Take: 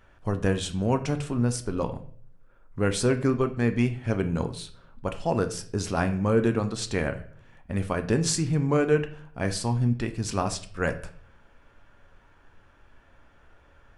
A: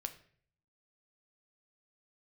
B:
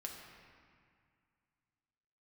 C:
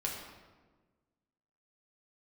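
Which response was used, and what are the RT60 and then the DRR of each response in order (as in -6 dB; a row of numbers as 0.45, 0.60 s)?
A; 0.55, 2.1, 1.4 s; 7.0, -0.5, -2.5 dB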